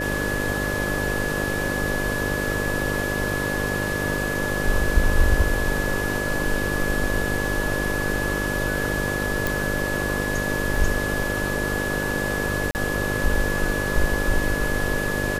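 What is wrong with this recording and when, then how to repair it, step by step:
buzz 50 Hz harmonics 12 -28 dBFS
tone 1700 Hz -27 dBFS
9.47 pop
10.76 gap 2.4 ms
12.71–12.75 gap 39 ms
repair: de-click; de-hum 50 Hz, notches 12; notch 1700 Hz, Q 30; interpolate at 10.76, 2.4 ms; interpolate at 12.71, 39 ms

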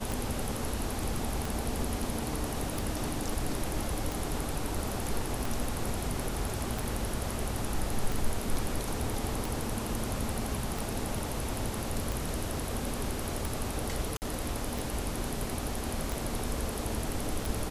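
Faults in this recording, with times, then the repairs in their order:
tick 45 rpm
14.17–14.22 gap 49 ms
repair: de-click; interpolate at 14.17, 49 ms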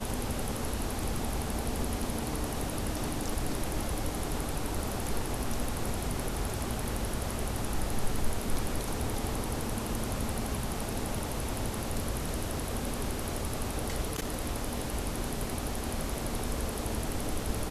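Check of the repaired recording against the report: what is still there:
none

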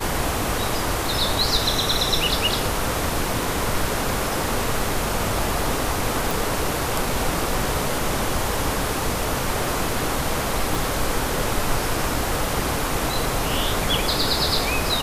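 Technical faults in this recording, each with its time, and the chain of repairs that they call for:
6.31 pop
10.75 pop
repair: de-click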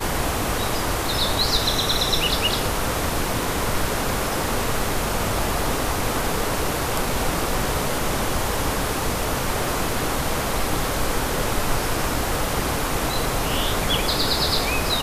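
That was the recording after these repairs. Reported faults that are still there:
10.75 pop

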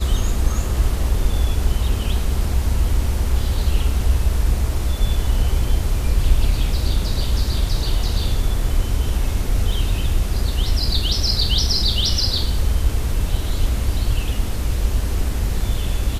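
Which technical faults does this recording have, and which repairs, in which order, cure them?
9.72 gap 2.5 ms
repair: interpolate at 9.72, 2.5 ms

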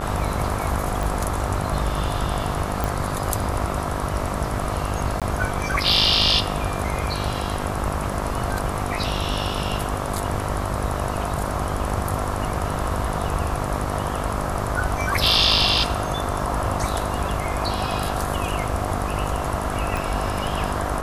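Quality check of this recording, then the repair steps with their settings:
buzz 50 Hz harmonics 27 -29 dBFS
1.03 pop
2.84 pop
5.2–5.22 gap 17 ms
19.97 pop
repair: de-click; de-hum 50 Hz, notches 27; interpolate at 5.2, 17 ms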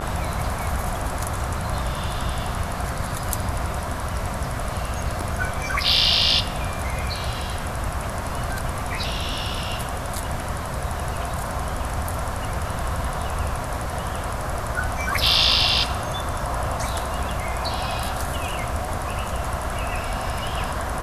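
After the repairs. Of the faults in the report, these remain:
19.97 pop

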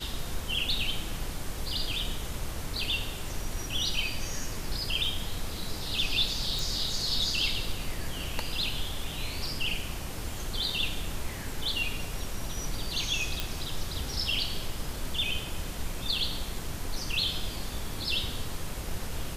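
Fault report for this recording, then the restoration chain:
6.59 pop
13.4 pop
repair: de-click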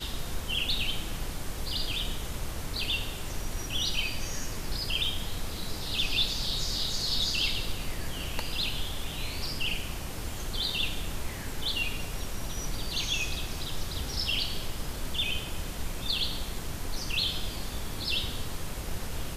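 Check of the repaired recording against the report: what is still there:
none

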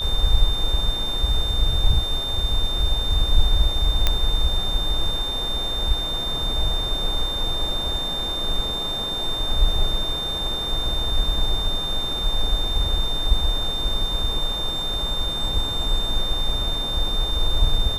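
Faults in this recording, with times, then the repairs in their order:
tone 3600 Hz -25 dBFS
4.07 pop -4 dBFS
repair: de-click; notch 3600 Hz, Q 30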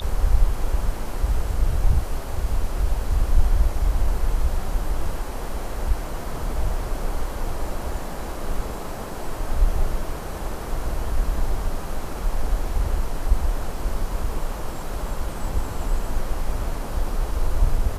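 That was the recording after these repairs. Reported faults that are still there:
none

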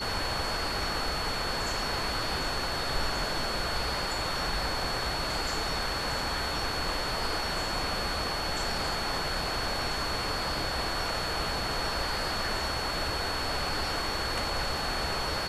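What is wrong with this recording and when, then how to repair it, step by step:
tone 4400 Hz -35 dBFS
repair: notch 4400 Hz, Q 30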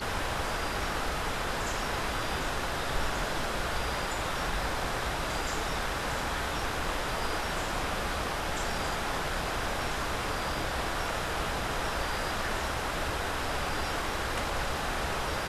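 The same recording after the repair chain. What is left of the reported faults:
none

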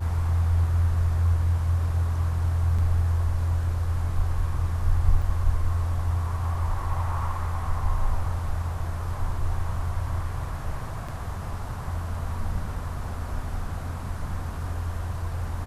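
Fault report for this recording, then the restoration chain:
2.78–2.79 gap 5.4 ms
5.22 gap 3.9 ms
11.08–11.09 gap 5.2 ms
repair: interpolate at 2.78, 5.4 ms; interpolate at 5.22, 3.9 ms; interpolate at 11.08, 5.2 ms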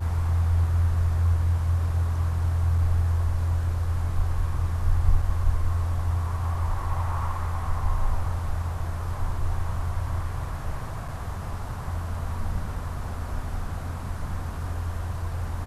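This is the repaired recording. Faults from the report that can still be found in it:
none

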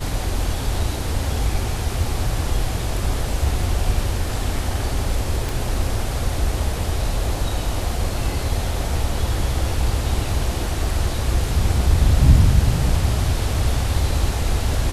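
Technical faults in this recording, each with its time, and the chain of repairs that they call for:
5.49 pop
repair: de-click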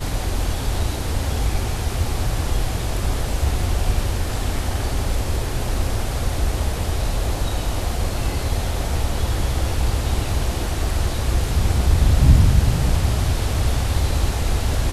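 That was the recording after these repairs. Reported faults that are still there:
5.49 pop

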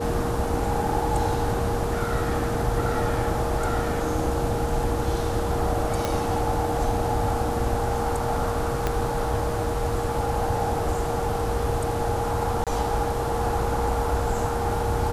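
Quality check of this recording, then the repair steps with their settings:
tone 470 Hz -29 dBFS
6.05 pop
8.87 pop -10 dBFS
12.64–12.67 gap 27 ms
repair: de-click; notch 470 Hz, Q 30; interpolate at 12.64, 27 ms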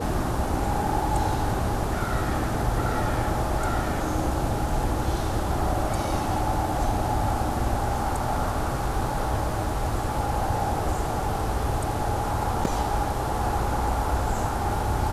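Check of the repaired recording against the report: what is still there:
8.87 pop

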